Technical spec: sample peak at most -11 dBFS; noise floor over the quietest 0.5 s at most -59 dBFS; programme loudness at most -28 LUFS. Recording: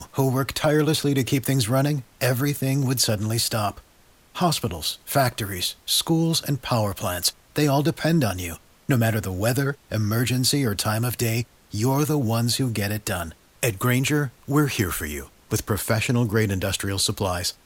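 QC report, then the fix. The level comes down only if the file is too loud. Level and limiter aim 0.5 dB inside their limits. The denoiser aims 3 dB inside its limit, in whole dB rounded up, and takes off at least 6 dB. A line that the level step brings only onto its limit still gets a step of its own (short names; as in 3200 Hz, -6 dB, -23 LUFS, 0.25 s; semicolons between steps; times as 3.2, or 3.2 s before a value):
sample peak -7.5 dBFS: fail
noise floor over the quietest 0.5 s -55 dBFS: fail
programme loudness -23.5 LUFS: fail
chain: gain -5 dB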